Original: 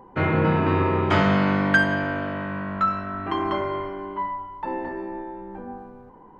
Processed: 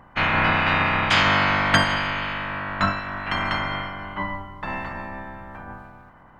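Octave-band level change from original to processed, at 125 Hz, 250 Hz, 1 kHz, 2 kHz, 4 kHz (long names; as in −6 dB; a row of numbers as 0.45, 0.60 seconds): −3.0, −5.5, +2.0, +4.0, +11.5 decibels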